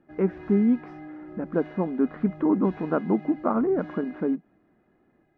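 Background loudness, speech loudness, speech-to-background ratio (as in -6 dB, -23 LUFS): -43.5 LUFS, -26.0 LUFS, 17.5 dB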